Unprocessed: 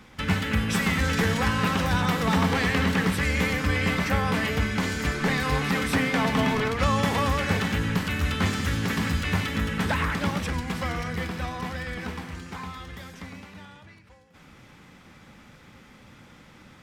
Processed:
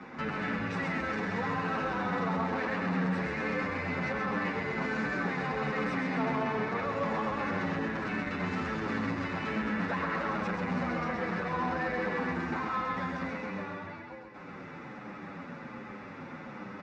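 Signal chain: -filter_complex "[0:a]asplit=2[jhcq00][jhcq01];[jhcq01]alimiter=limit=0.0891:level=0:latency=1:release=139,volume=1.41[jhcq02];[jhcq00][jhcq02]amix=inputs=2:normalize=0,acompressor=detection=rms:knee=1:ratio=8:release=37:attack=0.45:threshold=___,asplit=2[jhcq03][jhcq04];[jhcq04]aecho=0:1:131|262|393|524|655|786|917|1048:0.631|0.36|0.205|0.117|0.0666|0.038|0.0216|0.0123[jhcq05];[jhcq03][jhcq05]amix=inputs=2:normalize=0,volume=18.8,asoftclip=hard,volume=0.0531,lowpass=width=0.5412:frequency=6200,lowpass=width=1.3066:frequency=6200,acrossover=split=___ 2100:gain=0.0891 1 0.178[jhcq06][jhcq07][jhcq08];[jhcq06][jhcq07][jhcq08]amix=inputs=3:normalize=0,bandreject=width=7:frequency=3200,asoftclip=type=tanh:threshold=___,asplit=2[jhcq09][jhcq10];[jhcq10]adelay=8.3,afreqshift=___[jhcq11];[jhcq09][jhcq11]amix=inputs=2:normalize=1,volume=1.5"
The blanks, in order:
0.0708, 150, 0.0891, -1.3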